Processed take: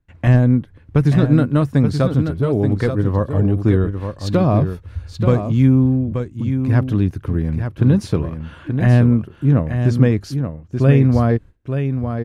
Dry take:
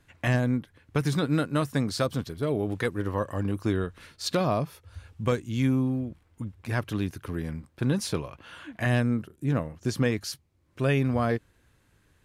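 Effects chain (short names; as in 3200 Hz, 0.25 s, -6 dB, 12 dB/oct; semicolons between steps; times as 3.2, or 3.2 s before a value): gate with hold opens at -51 dBFS; tilt -3 dB/oct; echo 0.88 s -7.5 dB; gain +4.5 dB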